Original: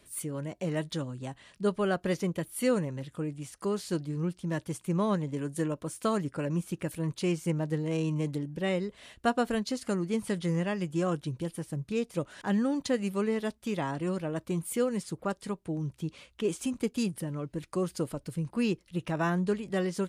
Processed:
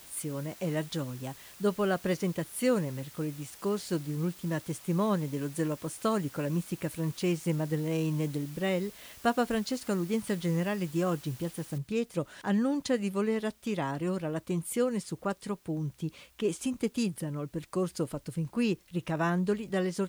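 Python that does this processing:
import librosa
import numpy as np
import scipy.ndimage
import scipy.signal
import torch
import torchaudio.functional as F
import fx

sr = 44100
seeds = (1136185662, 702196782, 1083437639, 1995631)

y = fx.noise_floor_step(x, sr, seeds[0], at_s=11.78, before_db=-52, after_db=-66, tilt_db=0.0)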